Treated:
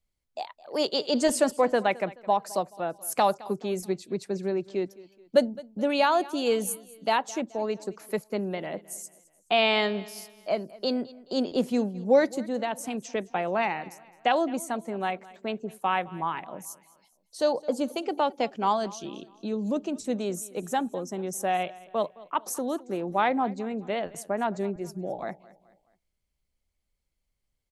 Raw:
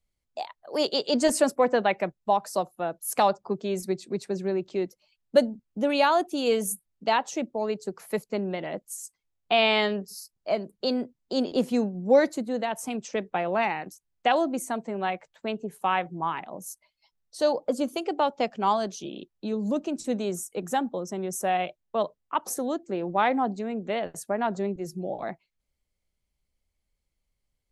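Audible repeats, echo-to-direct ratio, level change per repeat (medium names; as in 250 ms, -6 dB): 2, -19.5 dB, -7.5 dB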